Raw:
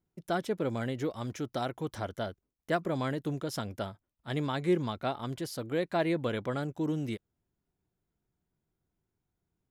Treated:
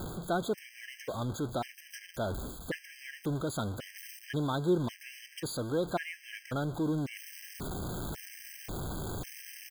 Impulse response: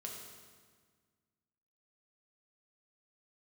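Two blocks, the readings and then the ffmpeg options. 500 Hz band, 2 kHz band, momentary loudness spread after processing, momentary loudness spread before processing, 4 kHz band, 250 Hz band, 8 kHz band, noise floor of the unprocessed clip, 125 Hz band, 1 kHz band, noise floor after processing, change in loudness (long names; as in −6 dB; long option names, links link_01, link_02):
−2.5 dB, −1.0 dB, 12 LU, 9 LU, 0.0 dB, −1.5 dB, +6.0 dB, below −85 dBFS, 0.0 dB, −2.5 dB, −55 dBFS, −2.5 dB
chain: -af "aeval=exprs='val(0)+0.5*0.0188*sgn(val(0))':channel_layout=same,areverse,acompressor=mode=upward:threshold=-30dB:ratio=2.5,areverse,aecho=1:1:147:0.0668,afftfilt=real='re*gt(sin(2*PI*0.92*pts/sr)*(1-2*mod(floor(b*sr/1024/1600),2)),0)':imag='im*gt(sin(2*PI*0.92*pts/sr)*(1-2*mod(floor(b*sr/1024/1600),2)),0)':win_size=1024:overlap=0.75,volume=-1.5dB"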